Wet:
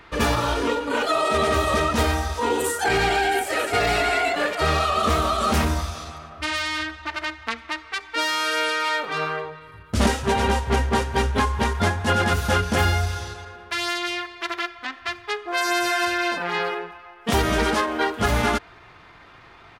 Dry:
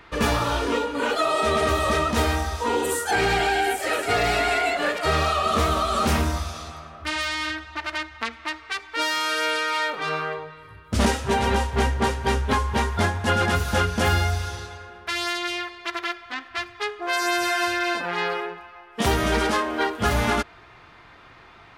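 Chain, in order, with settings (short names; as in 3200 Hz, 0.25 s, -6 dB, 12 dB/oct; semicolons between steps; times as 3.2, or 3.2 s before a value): tempo 1.1×; gain +1 dB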